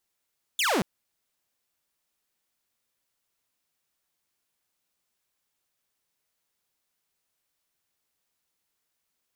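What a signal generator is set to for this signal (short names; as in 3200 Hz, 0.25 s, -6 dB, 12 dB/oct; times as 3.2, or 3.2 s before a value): laser zap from 3700 Hz, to 160 Hz, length 0.23 s saw, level -19.5 dB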